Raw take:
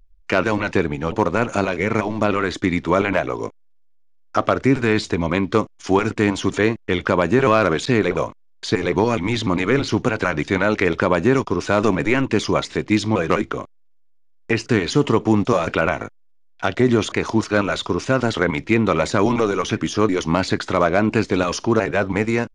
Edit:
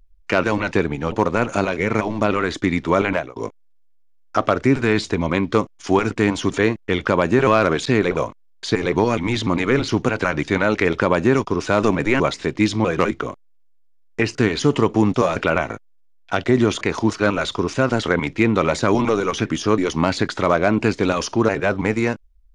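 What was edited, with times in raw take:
0:03.11–0:03.36: fade out
0:12.20–0:12.51: remove

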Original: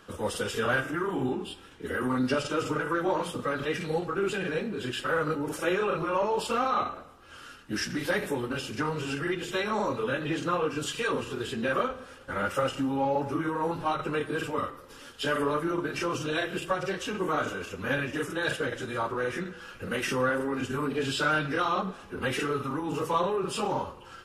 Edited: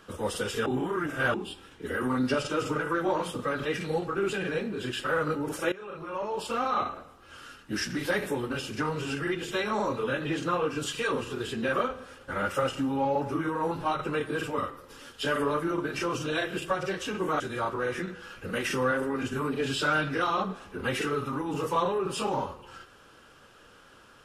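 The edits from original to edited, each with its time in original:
0:00.66–0:01.34: reverse
0:05.72–0:06.85: fade in, from −19.5 dB
0:17.40–0:18.78: remove

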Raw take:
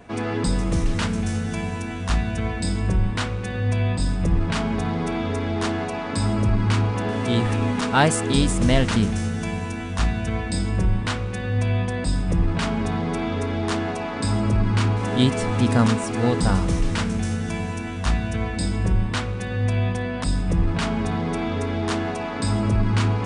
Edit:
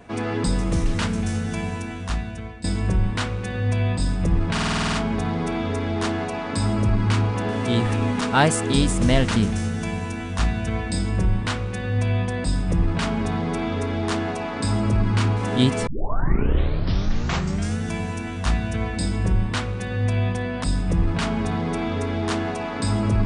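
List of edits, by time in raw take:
0:01.71–0:02.64: fade out, to −15 dB
0:04.53: stutter 0.05 s, 9 plays
0:15.47: tape start 1.90 s

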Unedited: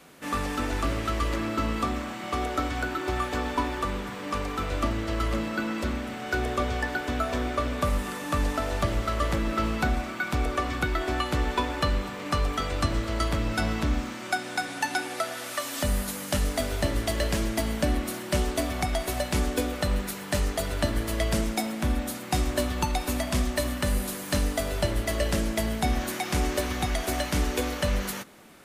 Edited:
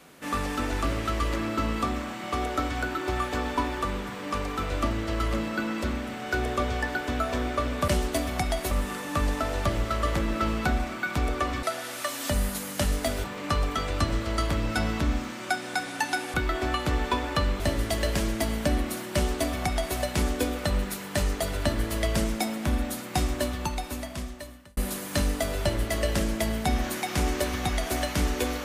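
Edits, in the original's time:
0:10.80–0:12.06: swap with 0:15.16–0:16.77
0:18.31–0:19.14: duplicate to 0:07.88
0:22.31–0:23.94: fade out

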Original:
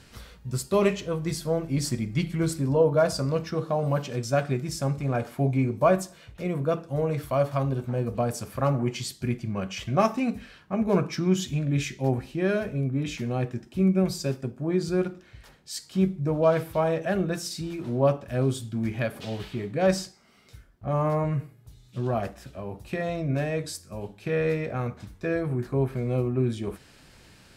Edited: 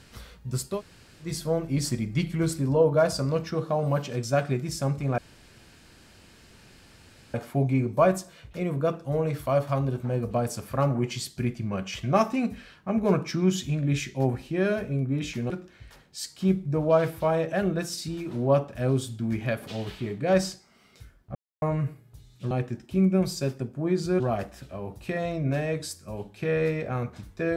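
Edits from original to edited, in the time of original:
0:00.74–0:01.27: fill with room tone, crossfade 0.16 s
0:05.18: splice in room tone 2.16 s
0:13.34–0:15.03: move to 0:22.04
0:20.88–0:21.15: silence

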